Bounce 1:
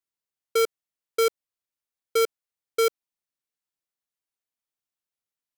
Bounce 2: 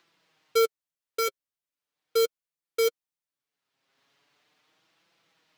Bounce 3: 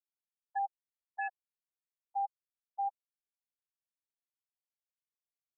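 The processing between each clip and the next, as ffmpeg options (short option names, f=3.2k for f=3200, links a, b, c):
-filter_complex "[0:a]acrossover=split=110|4900[a][b][c];[b]acompressor=mode=upward:threshold=-42dB:ratio=2.5[d];[a][d][c]amix=inputs=3:normalize=0,acrusher=bits=3:mode=log:mix=0:aa=0.000001,flanger=delay=5.9:depth=1.6:regen=16:speed=0.39:shape=triangular"
-af "highpass=f=270:t=q:w=0.5412,highpass=f=270:t=q:w=1.307,lowpass=f=3.5k:t=q:w=0.5176,lowpass=f=3.5k:t=q:w=0.7071,lowpass=f=3.5k:t=q:w=1.932,afreqshift=340,asoftclip=type=tanh:threshold=-23dB,afftfilt=real='re*gte(hypot(re,im),0.158)':imag='im*gte(hypot(re,im),0.158)':win_size=1024:overlap=0.75,volume=-6dB"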